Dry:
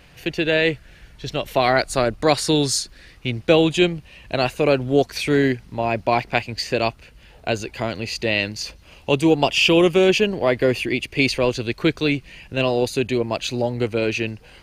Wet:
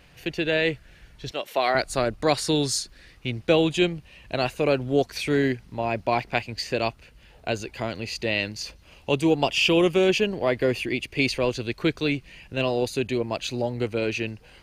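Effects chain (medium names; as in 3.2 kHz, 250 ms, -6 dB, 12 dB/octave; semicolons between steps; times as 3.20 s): 1.31–1.75 s: high-pass 360 Hz 12 dB/octave; trim -4.5 dB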